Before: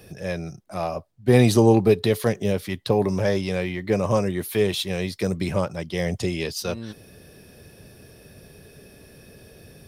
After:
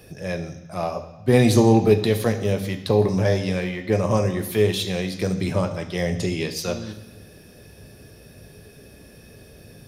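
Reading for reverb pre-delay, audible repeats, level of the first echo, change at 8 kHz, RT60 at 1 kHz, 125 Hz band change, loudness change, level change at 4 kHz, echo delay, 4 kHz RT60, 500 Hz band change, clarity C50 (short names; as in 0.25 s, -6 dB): 11 ms, none, none, +1.5 dB, 1.1 s, +2.0 dB, +1.0 dB, +1.0 dB, none, 1.1 s, +0.5 dB, 11.0 dB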